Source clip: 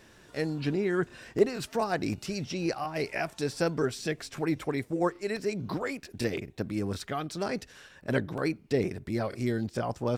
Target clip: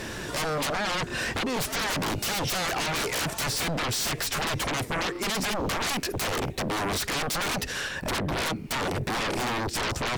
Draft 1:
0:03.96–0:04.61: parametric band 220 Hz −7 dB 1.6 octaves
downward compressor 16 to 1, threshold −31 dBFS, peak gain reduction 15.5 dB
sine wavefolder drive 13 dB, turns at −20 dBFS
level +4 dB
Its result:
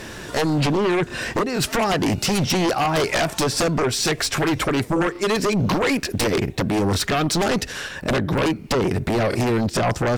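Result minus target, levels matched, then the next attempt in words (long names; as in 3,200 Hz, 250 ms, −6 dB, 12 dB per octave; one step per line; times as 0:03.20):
sine wavefolder: distortion −20 dB
0:03.96–0:04.61: parametric band 220 Hz −7 dB 1.6 octaves
downward compressor 16 to 1, threshold −31 dBFS, peak gain reduction 15.5 dB
sine wavefolder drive 13 dB, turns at −29 dBFS
level +4 dB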